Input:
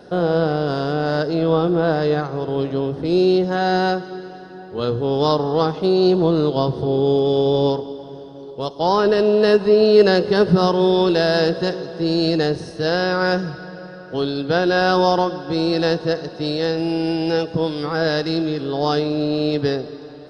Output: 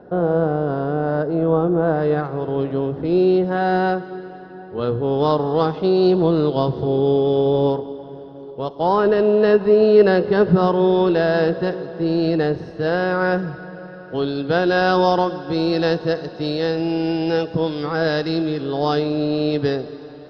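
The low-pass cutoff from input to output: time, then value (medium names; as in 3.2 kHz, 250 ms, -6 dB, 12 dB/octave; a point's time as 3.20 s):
1.80 s 1.3 kHz
2.23 s 2.4 kHz
5.09 s 2.4 kHz
5.70 s 3.7 kHz
6.80 s 3.7 kHz
7.54 s 2.4 kHz
13.71 s 2.4 kHz
14.73 s 4.3 kHz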